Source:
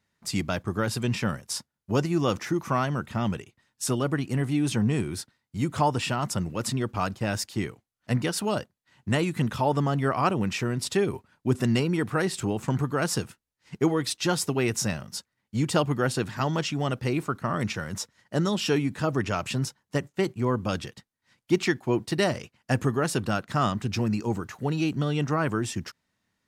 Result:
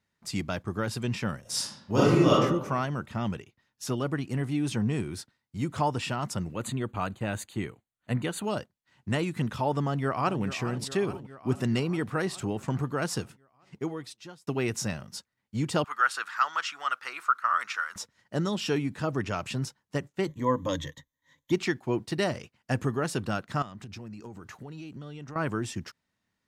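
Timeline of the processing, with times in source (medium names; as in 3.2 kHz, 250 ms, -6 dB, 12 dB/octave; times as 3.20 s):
1.41–2.31 s: reverb throw, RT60 0.91 s, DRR -8.5 dB
3.37–3.98 s: peaking EQ 8.5 kHz -10 dB 0.32 oct
6.54–8.44 s: Butterworth band-stop 5.3 kHz, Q 2.7
9.84–10.42 s: echo throw 420 ms, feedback 70%, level -12.5 dB
13.22–14.47 s: fade out
15.84–17.96 s: resonant high-pass 1.3 kHz, resonance Q 4.6
20.27–21.52 s: rippled EQ curve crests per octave 1.1, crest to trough 16 dB
23.62–25.36 s: compression 8:1, threshold -35 dBFS
whole clip: treble shelf 9.4 kHz -5 dB; trim -3.5 dB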